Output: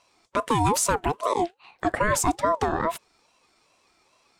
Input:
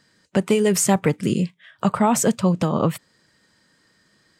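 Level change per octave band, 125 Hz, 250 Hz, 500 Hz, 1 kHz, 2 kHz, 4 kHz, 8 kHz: -8.5, -10.5, -4.5, +2.0, +1.5, -3.0, -3.5 dB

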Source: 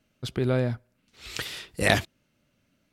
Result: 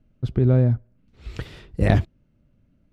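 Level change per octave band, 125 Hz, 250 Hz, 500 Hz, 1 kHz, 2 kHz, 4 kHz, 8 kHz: +10.5 dB, +6.5 dB, +1.5 dB, -1.5 dB, -7.0 dB, -11.5 dB, under -15 dB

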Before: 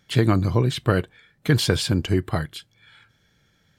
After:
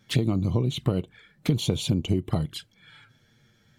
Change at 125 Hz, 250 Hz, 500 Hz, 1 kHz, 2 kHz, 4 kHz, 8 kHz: -3.5, -3.0, -6.5, -10.5, -12.0, -4.5, -5.0 dB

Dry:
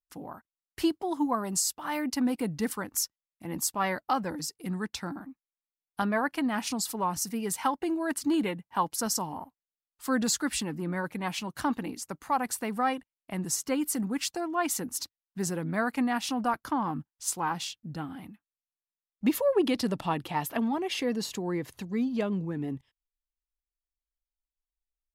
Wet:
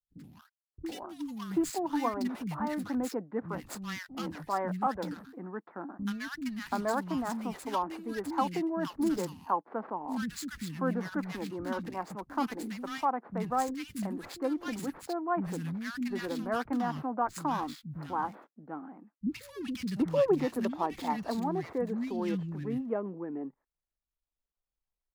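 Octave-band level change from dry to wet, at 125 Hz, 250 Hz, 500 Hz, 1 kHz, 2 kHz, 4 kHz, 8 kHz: -2.0, -2.5, -1.0, -1.5, -5.0, -9.5, -15.0 dB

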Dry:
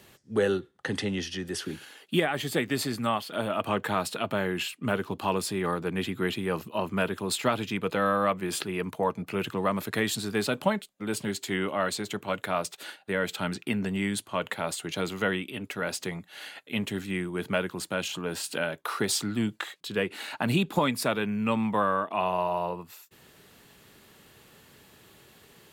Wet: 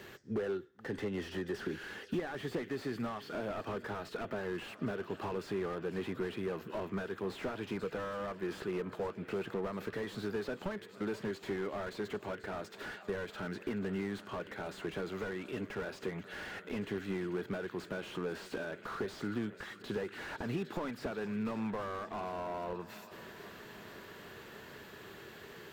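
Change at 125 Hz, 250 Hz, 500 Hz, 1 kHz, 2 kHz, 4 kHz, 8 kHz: -9.5, -8.5, -7.5, -12.5, -10.5, -15.0, -21.0 dB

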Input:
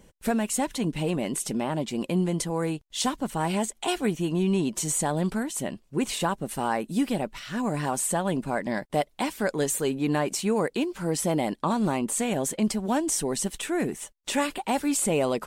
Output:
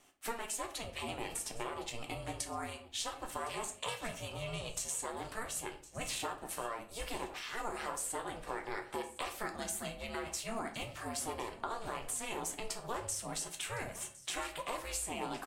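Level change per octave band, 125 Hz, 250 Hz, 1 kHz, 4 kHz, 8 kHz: -17.5, -21.5, -10.0, -7.5, -9.0 dB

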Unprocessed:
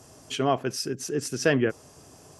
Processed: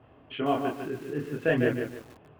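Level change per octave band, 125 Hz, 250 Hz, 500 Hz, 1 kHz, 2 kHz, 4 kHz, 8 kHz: -1.5 dB, -1.0 dB, -1.5 dB, -2.0 dB, -2.0 dB, -9.0 dB, under -20 dB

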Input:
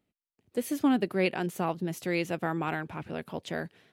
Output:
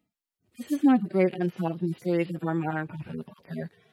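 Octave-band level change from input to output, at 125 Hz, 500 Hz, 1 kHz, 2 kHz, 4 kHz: +4.5, +2.5, 0.0, -3.0, -7.0 dB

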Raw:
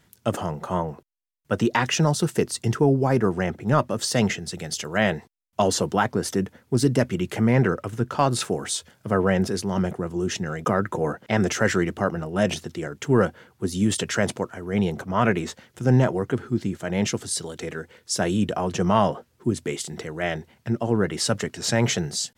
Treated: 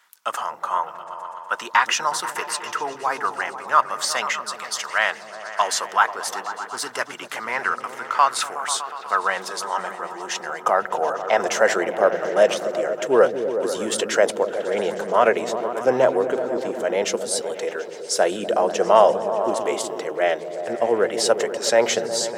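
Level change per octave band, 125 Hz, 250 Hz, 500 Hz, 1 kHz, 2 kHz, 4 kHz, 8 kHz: -21.0, -9.0, +5.0, +6.5, +5.0, +2.5, +2.0 dB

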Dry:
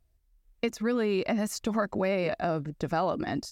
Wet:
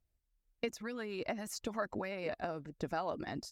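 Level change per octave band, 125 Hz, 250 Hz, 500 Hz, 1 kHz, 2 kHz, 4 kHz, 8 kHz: -12.5, -12.5, -10.5, -8.5, -7.5, -7.5, -7.0 dB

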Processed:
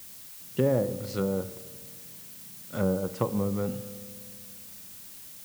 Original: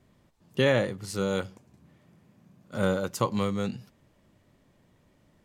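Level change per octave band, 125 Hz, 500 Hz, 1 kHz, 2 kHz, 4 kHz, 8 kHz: +0.5, -1.0, -5.5, -11.5, -8.5, +1.0 dB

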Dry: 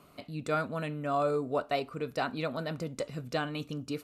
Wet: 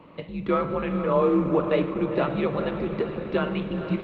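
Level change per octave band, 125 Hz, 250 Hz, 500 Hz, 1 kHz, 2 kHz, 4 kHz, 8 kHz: +7.5 dB, +11.5 dB, +8.5 dB, +4.5 dB, +3.0 dB, +0.5 dB, under -15 dB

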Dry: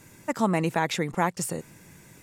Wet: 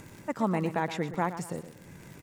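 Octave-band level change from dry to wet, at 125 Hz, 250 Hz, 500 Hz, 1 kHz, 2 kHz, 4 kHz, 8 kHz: -3.5, -3.5, -3.5, -4.0, -6.0, -9.5, -12.0 dB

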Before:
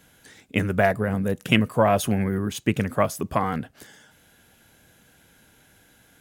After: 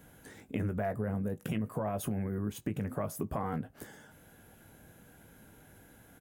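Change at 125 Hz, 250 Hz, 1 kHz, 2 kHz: -9.0, -10.5, -14.5, -19.0 dB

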